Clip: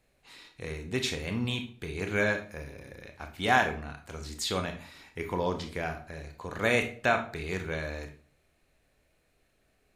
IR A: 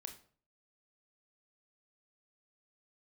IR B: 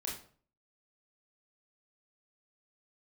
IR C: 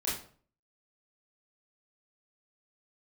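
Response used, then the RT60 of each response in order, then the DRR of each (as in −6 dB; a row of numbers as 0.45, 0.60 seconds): A; 0.45, 0.45, 0.45 seconds; 5.0, −3.5, −8.0 decibels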